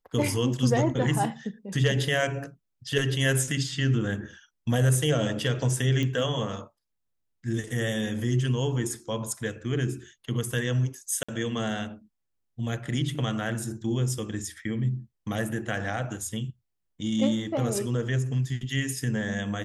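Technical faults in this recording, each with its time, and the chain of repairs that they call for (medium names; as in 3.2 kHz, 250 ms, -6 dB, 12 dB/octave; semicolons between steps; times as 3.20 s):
6.03 s: pop -17 dBFS
11.23–11.29 s: dropout 55 ms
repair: de-click; interpolate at 11.23 s, 55 ms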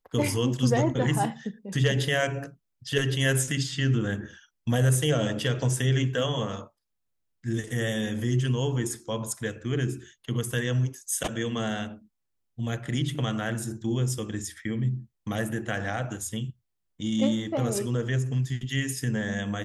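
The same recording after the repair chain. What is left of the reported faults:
nothing left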